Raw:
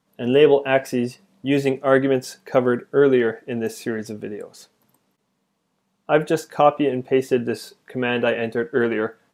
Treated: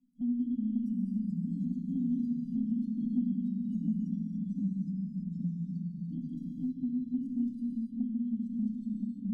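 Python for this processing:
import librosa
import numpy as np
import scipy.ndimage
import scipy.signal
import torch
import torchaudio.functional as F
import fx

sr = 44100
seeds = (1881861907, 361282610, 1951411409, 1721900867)

y = fx.pitch_trill(x, sr, semitones=-2.5, every_ms=105)
y = fx.curve_eq(y, sr, hz=(420.0, 1200.0, 2000.0), db=(0, 4, -18))
y = fx.level_steps(y, sr, step_db=16)
y = fx.tilt_shelf(y, sr, db=5.5, hz=970.0)
y = fx.fixed_phaser(y, sr, hz=450.0, stages=6)
y = fx.stiff_resonator(y, sr, f0_hz=240.0, decay_s=0.26, stiffness=0.03)
y = fx.echo_filtered(y, sr, ms=112, feedback_pct=49, hz=2000.0, wet_db=-15)
y = fx.rev_gated(y, sr, seeds[0], gate_ms=310, shape='flat', drr_db=-0.5)
y = fx.echo_pitch(y, sr, ms=319, semitones=-2, count=3, db_per_echo=-3.0)
y = fx.brickwall_bandstop(y, sr, low_hz=290.0, high_hz=2900.0)
y = fx.band_squash(y, sr, depth_pct=70)
y = y * 10.0 ** (1.5 / 20.0)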